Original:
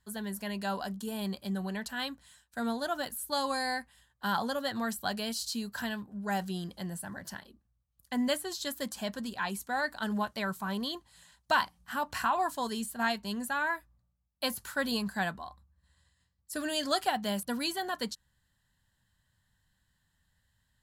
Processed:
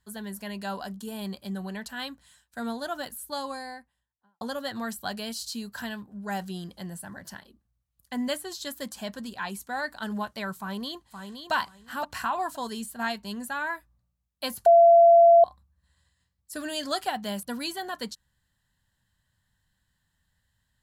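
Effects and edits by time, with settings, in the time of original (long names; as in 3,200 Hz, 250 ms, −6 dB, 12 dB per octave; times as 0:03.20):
0:03.05–0:04.41: fade out and dull
0:10.58–0:11.52: delay throw 520 ms, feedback 20%, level −7 dB
0:14.66–0:15.44: beep over 680 Hz −11.5 dBFS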